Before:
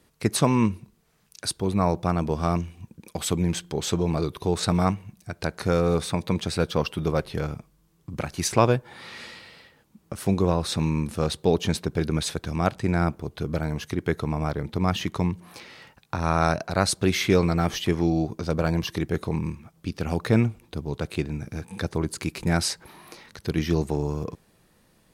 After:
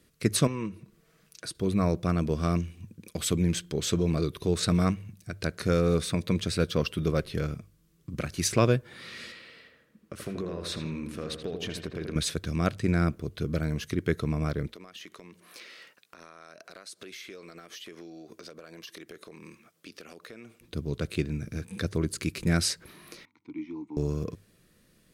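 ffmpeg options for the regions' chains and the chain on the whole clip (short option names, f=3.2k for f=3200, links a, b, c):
-filter_complex "[0:a]asettb=1/sr,asplit=3[a][b][c];[a]atrim=end=0.474[d];[b]atrim=start=0.47:end=1.55,asetpts=PTS-STARTPTS,afade=t=in:d=0.004:c=qsin,afade=t=out:st=1.076:d=0.004:c=qsin,equalizer=f=770:t=o:w=3:g=8.5,aecho=1:1:6.2:0.41,atrim=end_sample=47628,acompressor=threshold=-50dB:ratio=1.5:attack=3.2:release=140:knee=1:detection=peak[e];[c]atrim=start=1.546[f];[d][e]acrossfade=d=0.004:c1=hsin:c2=qsin[g];[g][f]acrossfade=d=0.004:c1=qsin:c2=hsin,asettb=1/sr,asplit=3[h][i][j];[h]atrim=end=9.324[k];[i]atrim=start=9.32:end=12.16,asetpts=PTS-STARTPTS,afade=t=in:d=0.004:c=qsin,afade=t=out:st=2.836:d=0.004:c=qsin,bass=f=250:g=-8,treble=f=4k:g=-7,acompressor=threshold=-28dB:ratio=5:attack=3.2:release=140:knee=1:detection=peak,asplit=2[l][m];[m]adelay=81,lowpass=f=2.1k:p=1,volume=-5dB,asplit=2[n][o];[o]adelay=81,lowpass=f=2.1k:p=1,volume=0.55,asplit=2[p][q];[q]adelay=81,lowpass=f=2.1k:p=1,volume=0.55,asplit=2[r][s];[s]adelay=81,lowpass=f=2.1k:p=1,volume=0.55,asplit=2[t][u];[u]adelay=81,lowpass=f=2.1k:p=1,volume=0.55,asplit=2[v][w];[w]adelay=81,lowpass=f=2.1k:p=1,volume=0.55,asplit=2[x][y];[y]adelay=81,lowpass=f=2.1k:p=1,volume=0.55[z];[l][n][p][r][t][v][x][z]amix=inputs=8:normalize=0,atrim=end_sample=125244[aa];[j]atrim=start=12.156[ab];[k][aa]acrossfade=d=0.004:c1=hsin:c2=qsin[ac];[ac][ab]acrossfade=d=0.004:c1=qsin:c2=hsin,asettb=1/sr,asplit=3[ad][ae][af];[ad]atrim=end=14.674[ag];[ae]atrim=start=14.67:end=20.61,asetpts=PTS-STARTPTS,afade=t=in:d=0.004:c=qsin,afade=t=out:st=5.936:d=0.004:c=qsin,highpass=430,acompressor=threshold=-38dB:ratio=16:attack=3.2:release=140:knee=1:detection=peak,asoftclip=type=hard:threshold=-29dB[ah];[af]atrim=start=20.606[ai];[ag][ah]acrossfade=d=0.004:c1=hsin:c2=qsin[aj];[aj][ai]acrossfade=d=0.004:c1=qsin:c2=hsin,asettb=1/sr,asplit=3[ak][al][am];[ak]atrim=end=23.254[an];[al]atrim=start=23.25:end=23.97,asetpts=PTS-STARTPTS,afade=t=in:d=0.004:c=qsin,afade=t=out:st=0.716:d=0.004:c=qsin,asplit=3[ao][ap][aq];[ao]bandpass=f=300:t=q:w=8,volume=0dB[ar];[ap]bandpass=f=870:t=q:w=8,volume=-6dB[as];[aq]bandpass=f=2.24k:t=q:w=8,volume=-9dB[at];[ar][as][at]amix=inputs=3:normalize=0,highpass=f=100:w=0.5412,highpass=f=100:w=1.3066,equalizer=f=170:t=q:w=4:g=-9,equalizer=f=390:t=q:w=4:g=-9,equalizer=f=960:t=q:w=4:g=10,equalizer=f=1.4k:t=q:w=4:g=6,equalizer=f=2.8k:t=q:w=4:g=-7,equalizer=f=4.7k:t=q:w=4:g=-7,lowpass=f=8.4k:w=0.5412,lowpass=f=8.4k:w=1.3066[au];[am]atrim=start=23.966[av];[an][au]acrossfade=d=0.004:c1=hsin:c2=qsin[aw];[aw][av]acrossfade=d=0.004:c1=qsin:c2=hsin,equalizer=f=850:w=2.7:g=-15,bandreject=f=50:t=h:w=6,bandreject=f=100:t=h:w=6,volume=-1dB"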